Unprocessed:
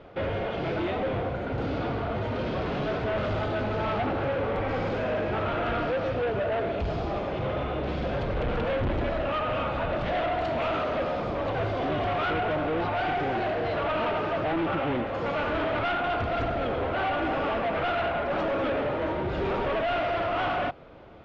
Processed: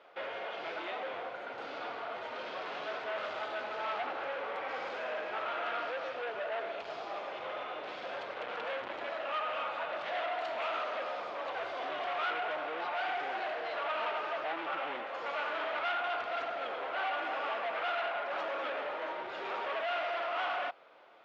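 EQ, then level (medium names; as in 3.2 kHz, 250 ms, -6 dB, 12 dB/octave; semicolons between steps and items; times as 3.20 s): high-pass 760 Hz 12 dB/octave; -4.0 dB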